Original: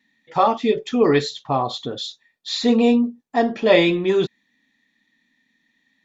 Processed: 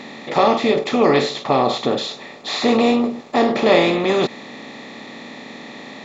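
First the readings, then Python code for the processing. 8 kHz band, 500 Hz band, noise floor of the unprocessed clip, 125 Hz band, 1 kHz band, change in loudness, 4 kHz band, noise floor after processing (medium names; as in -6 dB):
no reading, +2.0 dB, -69 dBFS, +0.5 dB, +3.0 dB, +2.0 dB, +3.0 dB, -38 dBFS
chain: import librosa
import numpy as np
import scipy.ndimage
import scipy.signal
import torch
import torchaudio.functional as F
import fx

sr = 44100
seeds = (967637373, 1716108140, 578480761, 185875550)

y = fx.bin_compress(x, sr, power=0.4)
y = y * 10.0 ** (-3.0 / 20.0)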